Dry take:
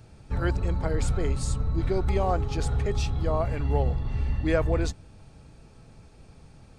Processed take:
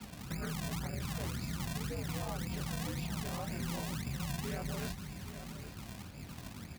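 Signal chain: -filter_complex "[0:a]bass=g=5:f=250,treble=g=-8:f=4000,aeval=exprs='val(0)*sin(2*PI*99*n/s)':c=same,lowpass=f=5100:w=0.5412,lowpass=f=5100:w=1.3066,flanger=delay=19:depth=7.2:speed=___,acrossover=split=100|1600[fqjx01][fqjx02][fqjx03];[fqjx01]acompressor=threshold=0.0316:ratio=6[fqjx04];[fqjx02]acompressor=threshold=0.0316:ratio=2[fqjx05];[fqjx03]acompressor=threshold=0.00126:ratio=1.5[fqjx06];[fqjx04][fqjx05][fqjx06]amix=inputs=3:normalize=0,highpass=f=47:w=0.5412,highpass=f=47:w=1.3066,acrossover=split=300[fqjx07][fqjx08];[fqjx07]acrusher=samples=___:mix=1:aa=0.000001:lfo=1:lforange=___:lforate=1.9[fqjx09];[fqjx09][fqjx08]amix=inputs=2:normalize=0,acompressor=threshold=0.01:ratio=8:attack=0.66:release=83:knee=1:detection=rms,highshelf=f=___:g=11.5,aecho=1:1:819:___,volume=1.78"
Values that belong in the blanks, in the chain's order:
2.6, 35, 35, 2200, 0.251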